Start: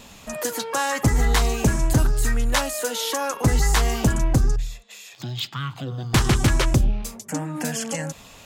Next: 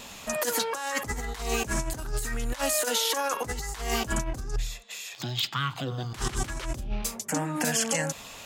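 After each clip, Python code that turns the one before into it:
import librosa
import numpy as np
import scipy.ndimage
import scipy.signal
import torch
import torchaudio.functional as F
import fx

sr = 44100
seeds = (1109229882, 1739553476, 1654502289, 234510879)

y = fx.low_shelf(x, sr, hz=330.0, db=-8.0)
y = fx.over_compress(y, sr, threshold_db=-28.0, ratio=-0.5)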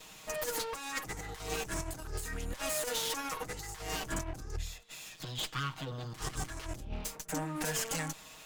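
y = fx.lower_of_two(x, sr, delay_ms=6.4)
y = F.gain(torch.from_numpy(y), -6.5).numpy()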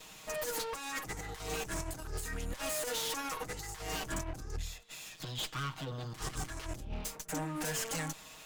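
y = np.clip(x, -10.0 ** (-31.5 / 20.0), 10.0 ** (-31.5 / 20.0))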